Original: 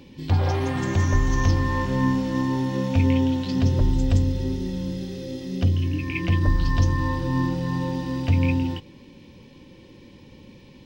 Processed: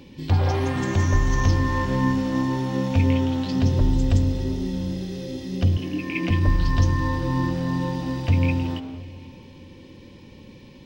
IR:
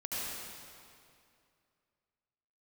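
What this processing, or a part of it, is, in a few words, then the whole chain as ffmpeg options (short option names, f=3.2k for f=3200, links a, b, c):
saturated reverb return: -filter_complex "[0:a]asplit=2[a][b];[1:a]atrim=start_sample=2205[c];[b][c]afir=irnorm=-1:irlink=0,asoftclip=type=tanh:threshold=-20.5dB,volume=-11.5dB[d];[a][d]amix=inputs=2:normalize=0,asettb=1/sr,asplit=3[e][f][g];[e]atrim=end=5.774[h];[f]atrim=start=5.77:end=6.31,asetpts=PTS-STARTPTS,afade=t=in:d=0.004:c=qsin,afade=t=out:st=0.536:d=0.004:c=qsin,lowshelf=f=140:t=q:w=1.5:g=-12[i];[g]atrim=start=6.306[j];[h][i]acrossfade=d=0.004:c1=hsin:c2=qsin[k];[k][j]acrossfade=d=0.004:c1=qsin:c2=hsin"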